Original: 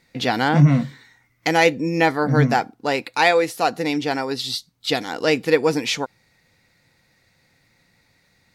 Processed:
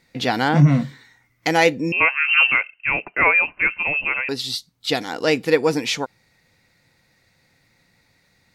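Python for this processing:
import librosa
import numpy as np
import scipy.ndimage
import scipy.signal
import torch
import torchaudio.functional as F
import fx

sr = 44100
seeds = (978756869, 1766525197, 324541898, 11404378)

y = fx.freq_invert(x, sr, carrier_hz=2900, at=(1.92, 4.29))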